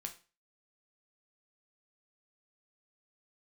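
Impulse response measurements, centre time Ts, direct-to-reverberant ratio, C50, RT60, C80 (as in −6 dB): 9 ms, 4.0 dB, 13.0 dB, 0.35 s, 18.5 dB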